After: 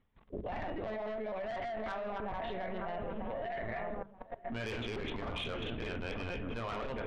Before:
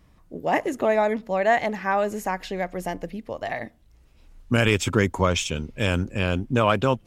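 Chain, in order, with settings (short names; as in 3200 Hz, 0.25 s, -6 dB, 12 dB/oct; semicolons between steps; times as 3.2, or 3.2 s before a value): reverse delay 0.146 s, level 0 dB; HPF 80 Hz 12 dB/oct; LPC vocoder at 8 kHz pitch kept; dark delay 0.93 s, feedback 52%, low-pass 1500 Hz, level -13.5 dB; on a send at -8 dB: reverb RT60 0.50 s, pre-delay 4 ms; on the sum: soft clip -17 dBFS, distortion -9 dB; level quantiser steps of 19 dB; notches 50/100/150/200 Hz; reverse; upward compressor, threshold -49 dBFS; reverse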